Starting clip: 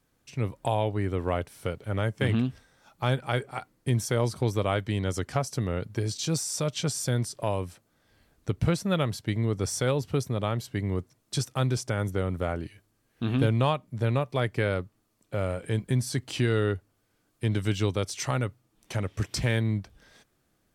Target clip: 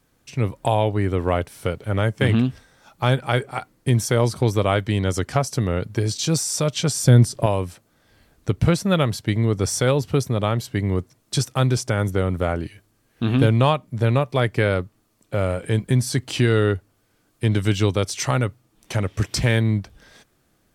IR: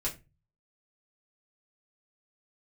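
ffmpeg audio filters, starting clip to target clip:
-filter_complex "[0:a]asettb=1/sr,asplit=3[a][b][c];[a]atrim=end=7.034[d];[b]atrim=start=7.03:end=7.46,asetpts=PTS-STARTPTS,afade=t=in:d=0.004:c=qsin,afade=t=out:st=0.426:d=0.004:c=qsin,lowshelf=f=400:g=9[e];[c]atrim=start=7.456[f];[d][e]acrossfade=d=0.004:c1=hsin:c2=qsin[g];[g][f]acrossfade=d=0.004:c1=qsin:c2=hsin,volume=7dB"

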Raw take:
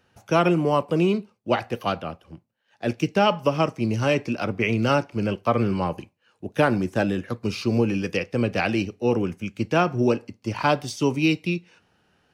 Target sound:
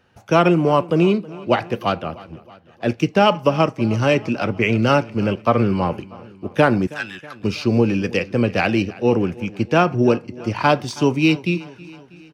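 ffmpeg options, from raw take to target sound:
-filter_complex "[0:a]asettb=1/sr,asplit=3[a][b][c];[a]atrim=end=6.874[d];[b]atrim=start=6.87:end=7.4,asetpts=PTS-STARTPTS,afade=t=in:d=0.004:c=qsin,afade=t=out:st=0.526:d=0.004:c=qsin,highpass=f=1.3k:w=0.5412,highpass=f=1.3k:w=1.3066[e];[c]atrim=start=7.396[f];[d][e]acrossfade=d=0.004:c1=hsin:c2=qsin[g];[g][f]acrossfade=d=0.004:c1=qsin:c2=hsin,asplit=2[h][i];[i]adynamicsmooth=sensitivity=4:basefreq=6.3k,volume=-0.5dB[j];[h][j]amix=inputs=2:normalize=0,aecho=1:1:321|642|963|1284:0.0944|0.0538|0.0307|0.0175,volume=-1dB"

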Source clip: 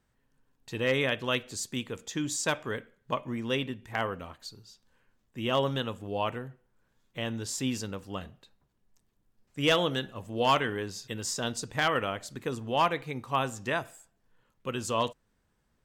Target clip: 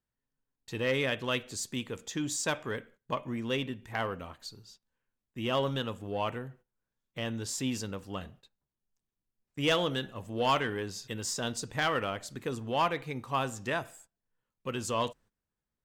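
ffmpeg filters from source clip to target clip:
-filter_complex "[0:a]agate=range=-16dB:threshold=-55dB:ratio=16:detection=peak,asplit=2[a][b];[b]asoftclip=type=tanh:threshold=-30.5dB,volume=-5.5dB[c];[a][c]amix=inputs=2:normalize=0,volume=-4dB"

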